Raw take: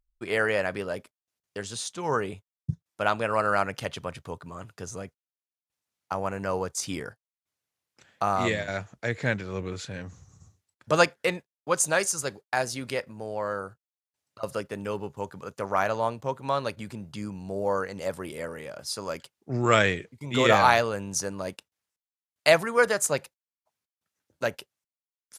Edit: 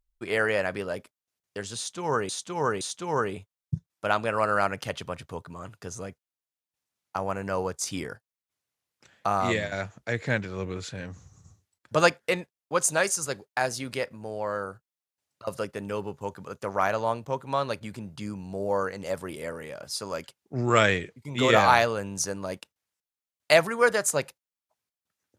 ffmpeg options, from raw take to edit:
ffmpeg -i in.wav -filter_complex "[0:a]asplit=3[link_01][link_02][link_03];[link_01]atrim=end=2.292[link_04];[link_02]atrim=start=1.768:end=2.292[link_05];[link_03]atrim=start=1.768[link_06];[link_04][link_05]acrossfade=duration=0.004:curve1=hsin:curve2=hsin[link_07];[link_07][link_06]acrossfade=duration=0.004:curve1=hsin:curve2=hsin" out.wav

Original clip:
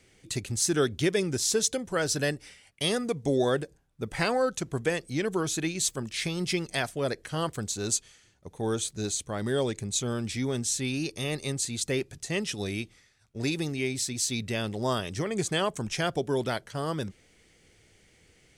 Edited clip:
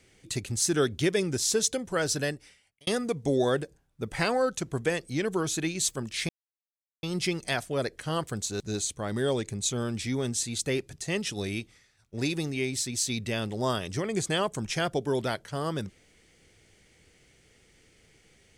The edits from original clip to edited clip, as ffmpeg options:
ffmpeg -i in.wav -filter_complex "[0:a]asplit=5[link_01][link_02][link_03][link_04][link_05];[link_01]atrim=end=2.87,asetpts=PTS-STARTPTS,afade=type=out:start_time=2.1:duration=0.77[link_06];[link_02]atrim=start=2.87:end=6.29,asetpts=PTS-STARTPTS,afade=type=in:duration=0.004:curve=hsin,afade=type=out:start_time=3.416:duration=0.004:curve=hsin,apad=pad_dur=0.74[link_07];[link_03]atrim=start=6.29:end=7.862,asetpts=PTS-STARTPTS,afade=type=in:duration=0.004:curve=hsin[link_08];[link_04]atrim=start=8.898:end=10.712[link_09];[link_05]atrim=start=11.628[link_10];[link_06][link_07][link_08]concat=n=3:v=0:a=1[link_11];[link_11][link_09]acrossfade=duration=0.004:curve1=hsin:curve2=hsin[link_12];[link_12][link_10]acrossfade=duration=0.004:curve1=hsin:curve2=hsin" out.wav

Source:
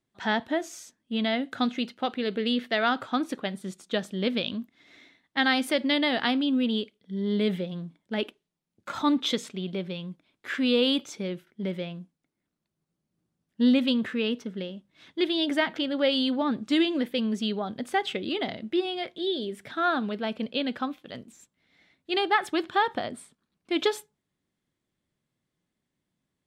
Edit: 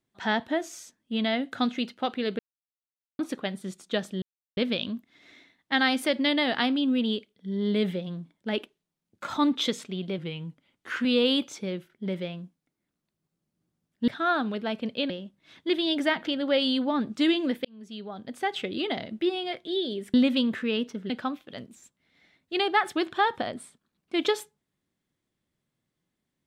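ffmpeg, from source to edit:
ffmpeg -i in.wav -filter_complex "[0:a]asplit=11[link_01][link_02][link_03][link_04][link_05][link_06][link_07][link_08][link_09][link_10][link_11];[link_01]atrim=end=2.39,asetpts=PTS-STARTPTS,afade=type=out:start_time=2.386:duration=0.004:curve=hsin[link_12];[link_02]atrim=start=2.39:end=3.19,asetpts=PTS-STARTPTS,volume=0[link_13];[link_03]atrim=start=3.19:end=4.22,asetpts=PTS-STARTPTS,afade=type=in:duration=0.004:curve=hsin,afade=type=out:start_time=1.026:duration=0.004:curve=hsin,apad=pad_dur=0.35[link_14];[link_04]atrim=start=4.22:end=9.834,asetpts=PTS-STARTPTS,afade=type=in:duration=0.004:curve=hsin[link_15];[link_05]atrim=start=9.83:end=10.62,asetpts=PTS-STARTPTS,asetrate=40131,aresample=44100[link_16];[link_06]atrim=start=10.616:end=13.652[link_17];[link_07]atrim=start=19.648:end=20.672[link_18];[link_08]atrim=start=14.608:end=17.16,asetpts=PTS-STARTPTS,afade=type=out:start_time=2.548:duration=0.004:curve=hsin[link_19];[link_09]atrim=start=17.16:end=19.652,asetpts=PTS-STARTPTS,afade=type=in:duration=1.09[link_20];[link_10]atrim=start=13.648:end=14.612[link_21];[link_11]atrim=start=20.668[link_22];[link_12][link_13][link_14][link_15]concat=n=4:v=0:a=1[link_23];[link_23][link_16]acrossfade=duration=0.004:curve1=hsin:curve2=hsin[link_24];[link_24][link_17]acrossfade=duration=0.004:curve1=hsin:curve2=hsin[link_25];[link_25][link_18]acrossfade=duration=0.004:curve1=hsin:curve2=hsin[link_26];[link_19][link_20]concat=n=2:v=0:a=1[link_27];[link_26][link_27]acrossfade=duration=0.004:curve1=hsin:curve2=hsin[link_28];[link_28][link_21]acrossfade=duration=0.004:curve1=hsin:curve2=hsin[link_29];[link_29][link_22]acrossfade=duration=0.004:curve1=hsin:curve2=hsin" out.wav

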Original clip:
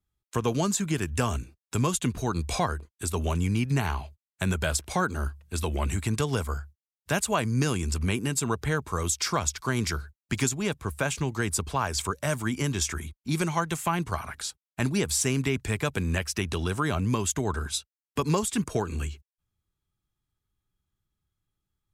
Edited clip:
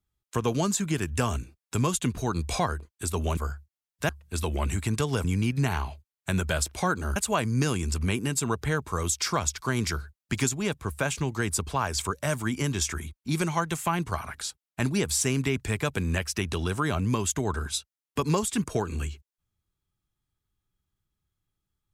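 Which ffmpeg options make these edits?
ffmpeg -i in.wav -filter_complex "[0:a]asplit=5[link_01][link_02][link_03][link_04][link_05];[link_01]atrim=end=3.372[link_06];[link_02]atrim=start=6.438:end=7.162[link_07];[link_03]atrim=start=5.288:end=6.442[link_08];[link_04]atrim=start=3.368:end=5.292[link_09];[link_05]atrim=start=7.158[link_10];[link_06][link_07]acrossfade=duration=0.004:curve1=hsin:curve2=hsin[link_11];[link_11][link_08]acrossfade=duration=0.004:curve1=hsin:curve2=hsin[link_12];[link_12][link_09]acrossfade=duration=0.004:curve1=hsin:curve2=hsin[link_13];[link_13][link_10]acrossfade=duration=0.004:curve1=hsin:curve2=hsin" out.wav

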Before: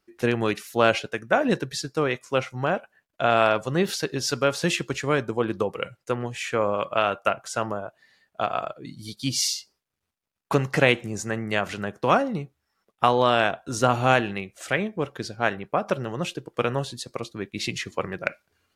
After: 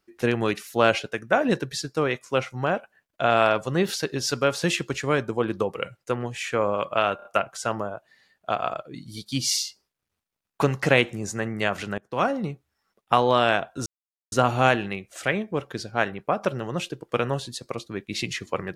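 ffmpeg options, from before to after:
ffmpeg -i in.wav -filter_complex "[0:a]asplit=6[link_01][link_02][link_03][link_04][link_05][link_06];[link_01]atrim=end=7.192[link_07];[link_02]atrim=start=7.158:end=7.192[link_08];[link_03]atrim=start=7.158:end=7.192[link_09];[link_04]atrim=start=7.158:end=11.89,asetpts=PTS-STARTPTS,afade=type=out:start_time=4.728:duration=0.004:curve=hsin:silence=0.0794328[link_10];[link_05]atrim=start=11.89:end=13.77,asetpts=PTS-STARTPTS,afade=type=in:duration=0.39:silence=0.0794328,afade=type=out:start_time=1.876:duration=0.004:curve=hsin,apad=pad_dur=0.46[link_11];[link_06]atrim=start=13.77,asetpts=PTS-STARTPTS,afade=type=in:duration=0.004:curve=hsin[link_12];[link_07][link_08]acrossfade=duration=0.004:curve1=hsin:curve2=hsin[link_13];[link_13][link_09]acrossfade=duration=0.004:curve1=hsin:curve2=hsin[link_14];[link_10][link_11][link_12]concat=n=3:v=0:a=1[link_15];[link_14][link_15]acrossfade=duration=0.004:curve1=hsin:curve2=hsin" out.wav

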